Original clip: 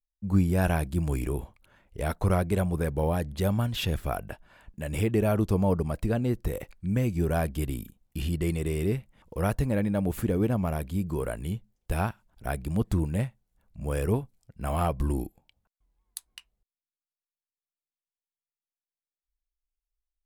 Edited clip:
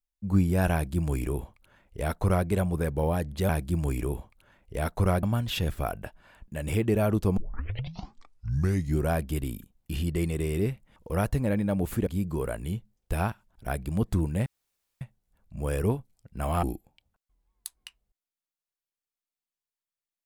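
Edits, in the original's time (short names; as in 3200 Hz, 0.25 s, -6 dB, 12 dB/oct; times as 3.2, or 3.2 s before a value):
0.73–2.47 copy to 3.49
5.63 tape start 1.75 s
10.33–10.86 cut
13.25 insert room tone 0.55 s
14.87–15.14 cut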